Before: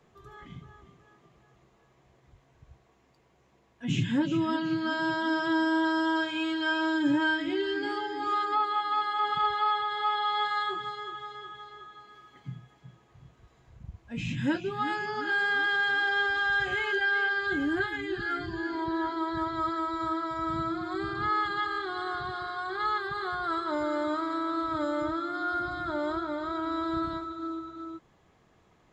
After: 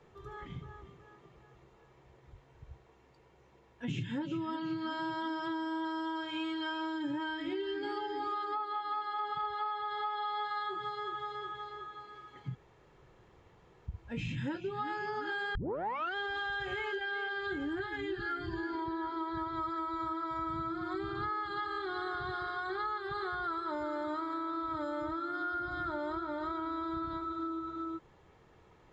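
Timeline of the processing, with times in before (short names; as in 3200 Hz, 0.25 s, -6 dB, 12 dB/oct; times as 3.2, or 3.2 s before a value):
12.55–13.87 room tone
15.55 tape start 0.60 s
whole clip: LPF 3600 Hz 6 dB/oct; comb 2.2 ms, depth 36%; compressor, threshold -36 dBFS; gain +2 dB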